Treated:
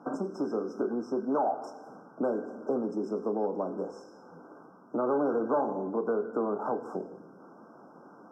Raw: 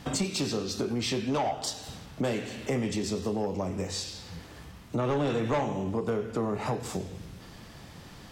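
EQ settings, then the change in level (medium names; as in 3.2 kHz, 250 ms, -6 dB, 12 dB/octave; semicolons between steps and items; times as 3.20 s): high-pass 250 Hz 24 dB/octave; brick-wall FIR band-stop 1.6–5.1 kHz; distance through air 420 m; +2.5 dB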